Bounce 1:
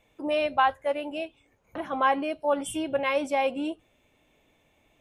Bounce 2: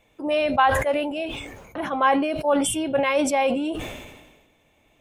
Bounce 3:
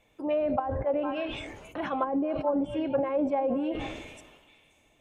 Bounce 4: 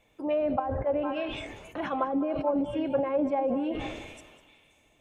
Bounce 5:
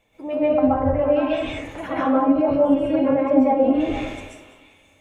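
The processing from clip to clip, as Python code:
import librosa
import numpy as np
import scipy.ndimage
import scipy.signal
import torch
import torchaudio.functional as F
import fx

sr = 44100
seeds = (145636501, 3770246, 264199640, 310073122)

y1 = fx.sustainer(x, sr, db_per_s=45.0)
y1 = F.gain(torch.from_numpy(y1), 3.5).numpy()
y2 = fx.echo_stepped(y1, sr, ms=226, hz=420.0, octaves=1.4, feedback_pct=70, wet_db=-11)
y2 = fx.env_lowpass_down(y2, sr, base_hz=440.0, full_db=-16.0)
y2 = F.gain(torch.from_numpy(y2), -4.0).numpy()
y3 = y2 + 10.0 ** (-16.0 / 20.0) * np.pad(y2, (int(199 * sr / 1000.0), 0))[:len(y2)]
y4 = fx.rev_plate(y3, sr, seeds[0], rt60_s=0.53, hf_ratio=0.65, predelay_ms=115, drr_db=-7.0)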